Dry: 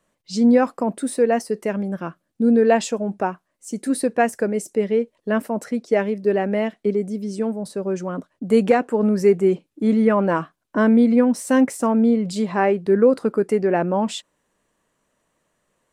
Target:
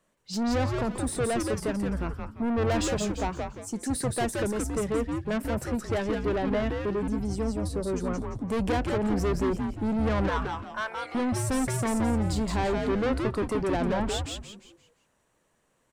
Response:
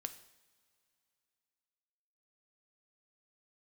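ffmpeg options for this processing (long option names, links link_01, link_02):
-filter_complex "[0:a]asettb=1/sr,asplit=3[link_01][link_02][link_03];[link_01]atrim=end=10.294[link_04];[link_02]atrim=start=10.29:end=11.15,asetpts=PTS-STARTPTS,afade=type=in:duration=0.004:curve=qsin,afade=type=out:start_time=0.856:duration=0.004:curve=qsin,highpass=frequency=830:width=0.5412,highpass=frequency=830:width=1.3066[link_05];[link_03]atrim=start=11.146[link_06];[link_04][link_05]acrossfade=duration=0.004:curve1=hsin:curve2=qsin[link_07];[link_07][link_06]acrossfade=duration=0.004:curve1=qsin:curve2=hsin,asoftclip=type=tanh:threshold=-22.5dB,asplit=6[link_08][link_09][link_10][link_11][link_12][link_13];[link_09]adelay=172,afreqshift=-140,volume=-3dB[link_14];[link_10]adelay=344,afreqshift=-280,volume=-11.9dB[link_15];[link_11]adelay=516,afreqshift=-420,volume=-20.7dB[link_16];[link_12]adelay=688,afreqshift=-560,volume=-29.6dB[link_17];[link_13]adelay=860,afreqshift=-700,volume=-38.5dB[link_18];[link_08][link_14][link_15][link_16][link_17][link_18]amix=inputs=6:normalize=0,volume=-2.5dB"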